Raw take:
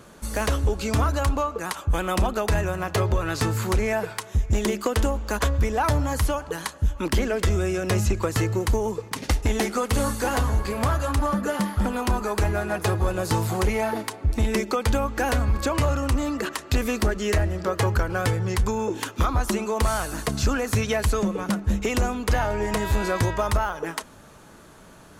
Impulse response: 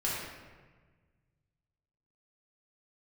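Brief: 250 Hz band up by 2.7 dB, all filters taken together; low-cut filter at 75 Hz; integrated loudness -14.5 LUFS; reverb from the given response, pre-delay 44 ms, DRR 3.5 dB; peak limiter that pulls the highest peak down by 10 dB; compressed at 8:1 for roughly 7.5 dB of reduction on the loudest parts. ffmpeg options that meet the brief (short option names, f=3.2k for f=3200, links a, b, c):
-filter_complex "[0:a]highpass=75,equalizer=f=250:t=o:g=3.5,acompressor=threshold=-26dB:ratio=8,alimiter=level_in=1dB:limit=-24dB:level=0:latency=1,volume=-1dB,asplit=2[a][b];[1:a]atrim=start_sample=2205,adelay=44[c];[b][c]afir=irnorm=-1:irlink=0,volume=-10.5dB[d];[a][d]amix=inputs=2:normalize=0,volume=18dB"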